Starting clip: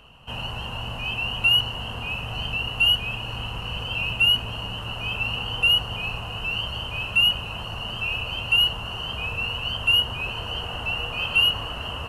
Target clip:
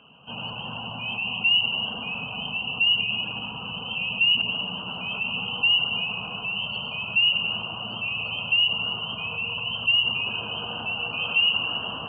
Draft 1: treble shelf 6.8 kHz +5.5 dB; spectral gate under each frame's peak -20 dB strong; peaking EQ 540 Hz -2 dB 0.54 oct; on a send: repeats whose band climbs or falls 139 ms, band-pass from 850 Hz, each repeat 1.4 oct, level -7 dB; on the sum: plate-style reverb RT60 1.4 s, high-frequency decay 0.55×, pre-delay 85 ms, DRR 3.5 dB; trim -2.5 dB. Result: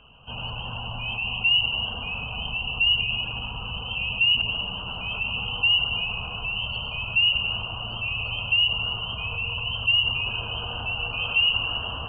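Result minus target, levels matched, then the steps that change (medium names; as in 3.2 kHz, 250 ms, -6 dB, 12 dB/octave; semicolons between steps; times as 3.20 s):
250 Hz band -4.0 dB
add after spectral gate: resonant high-pass 190 Hz, resonance Q 1.7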